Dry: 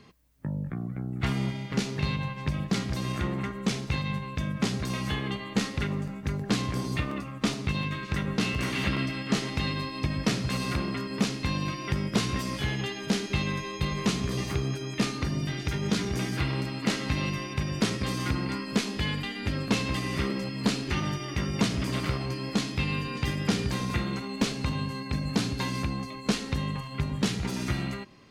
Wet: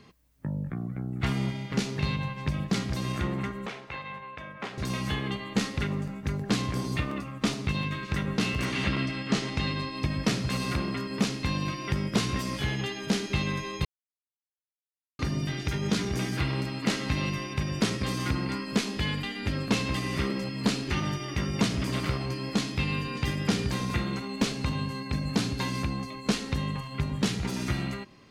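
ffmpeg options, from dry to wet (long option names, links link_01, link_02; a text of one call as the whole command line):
ffmpeg -i in.wav -filter_complex "[0:a]asettb=1/sr,asplit=3[link_01][link_02][link_03];[link_01]atrim=end=3.664[link_04];[link_02]atrim=start=3.66:end=4.78,asetpts=PTS-STARTPTS,afade=type=in:duration=0.004:curve=qsin,afade=type=out:start_time=1.116:duration=0.004:curve=qsin,acrossover=split=460 2800:gain=0.126 1 0.112[link_05][link_06][link_07];[link_05][link_06][link_07]amix=inputs=3:normalize=0[link_08];[link_03]atrim=start=4.776[link_09];[link_04][link_08]acrossfade=duration=0.004:curve1=hsin:curve2=qsin[link_10];[link_10][link_09]acrossfade=duration=0.004:curve1=qsin:curve2=hsin,asettb=1/sr,asplit=3[link_11][link_12][link_13];[link_11]atrim=end=8.654[link_14];[link_12]atrim=start=8.65:end=9.97,asetpts=PTS-STARTPTS,afade=type=in:duration=0.004:curve=qsin,afade=type=out:start_time=1.316:duration=0.004:curve=qsin,lowpass=8600[link_15];[link_13]atrim=start=9.966[link_16];[link_14][link_15]acrossfade=duration=0.004:curve1=hsin:curve2=qsin[link_17];[link_17][link_16]acrossfade=duration=0.004:curve1=qsin:curve2=hsin,asplit=3[link_18][link_19][link_20];[link_18]atrim=end=13.85,asetpts=PTS-STARTPTS,afade=type=out:start_time=13.846:duration=0.004:curve=hsin[link_21];[link_19]atrim=start=13.85:end=15.19,asetpts=PTS-STARTPTS,volume=0[link_22];[link_20]atrim=start=15.19,asetpts=PTS-STARTPTS,afade=type=in:duration=0.004:curve=hsin[link_23];[link_21][link_22][link_23]concat=n=3:v=0:a=1" out.wav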